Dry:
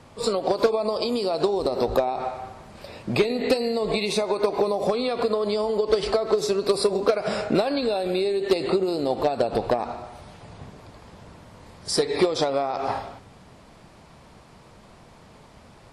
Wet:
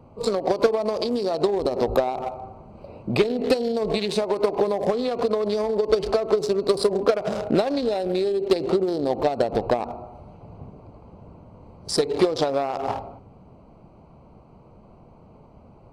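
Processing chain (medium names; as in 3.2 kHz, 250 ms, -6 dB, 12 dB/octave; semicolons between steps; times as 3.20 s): local Wiener filter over 25 samples; trim +1.5 dB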